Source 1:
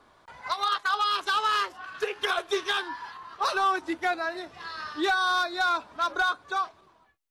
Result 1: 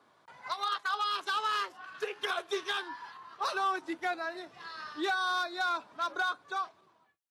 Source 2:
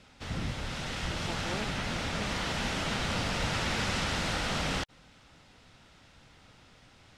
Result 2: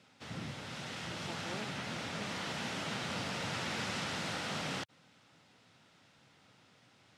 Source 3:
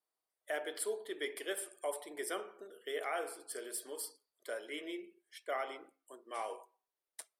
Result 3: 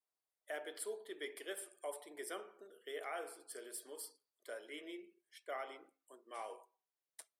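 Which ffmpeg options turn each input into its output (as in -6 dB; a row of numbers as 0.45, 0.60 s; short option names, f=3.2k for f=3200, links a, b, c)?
-af "highpass=f=110:w=0.5412,highpass=f=110:w=1.3066,volume=-6dB"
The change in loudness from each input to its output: -6.0, -6.5, -6.0 LU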